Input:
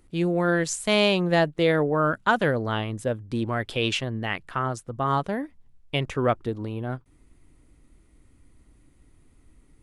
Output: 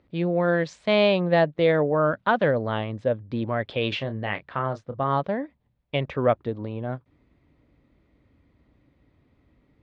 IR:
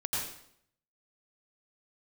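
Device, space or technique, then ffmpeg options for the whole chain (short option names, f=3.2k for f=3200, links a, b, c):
guitar cabinet: -filter_complex "[0:a]asettb=1/sr,asplit=3[a][b][c];[a]atrim=end=3.894[d];[b]atrim=start=3.89:end=5.03,asetpts=PTS-STARTPTS,afade=t=in:d=0.004:c=qsin,afade=t=out:st=1.136:d=0.004:c=qsin,asplit=2[e][f];[f]adelay=29,volume=-10dB[g];[e][g]amix=inputs=2:normalize=0,atrim=end_sample=50274[h];[c]atrim=start=5.026[i];[d][h]acrossfade=d=0.004:c1=hsin:c2=qsin[j];[j][i]acrossfade=d=0.004:c1=qsin:c2=hsin,highpass=78,equalizer=f=350:t=q:w=4:g=-3,equalizer=f=570:t=q:w=4:g=6,equalizer=f=1.4k:t=q:w=4:g=-3,equalizer=f=2.9k:t=q:w=4:g=-4,lowpass=f=3.9k:w=0.5412,lowpass=f=3.9k:w=1.3066"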